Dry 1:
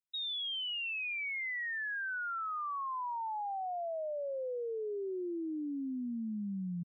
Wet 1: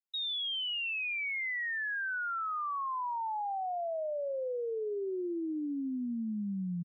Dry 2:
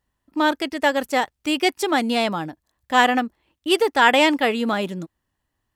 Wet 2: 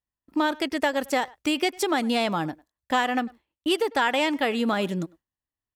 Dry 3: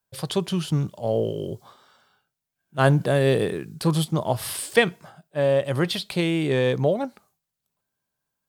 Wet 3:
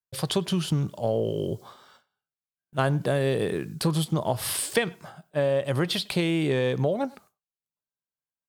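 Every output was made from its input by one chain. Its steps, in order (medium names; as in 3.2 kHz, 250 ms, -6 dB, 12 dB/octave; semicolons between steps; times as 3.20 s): gate with hold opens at -47 dBFS; compression 4:1, threshold -24 dBFS; speakerphone echo 100 ms, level -22 dB; trim +2.5 dB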